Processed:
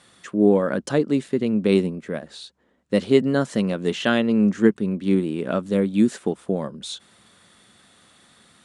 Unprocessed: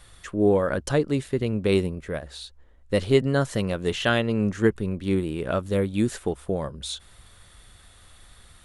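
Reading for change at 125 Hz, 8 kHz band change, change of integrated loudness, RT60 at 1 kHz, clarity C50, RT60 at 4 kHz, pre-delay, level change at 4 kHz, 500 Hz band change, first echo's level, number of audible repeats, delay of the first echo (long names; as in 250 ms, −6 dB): −1.0 dB, −1.0 dB, +3.5 dB, no reverb audible, no reverb audible, no reverb audible, no reverb audible, 0.0 dB, +2.0 dB, no echo audible, no echo audible, no echo audible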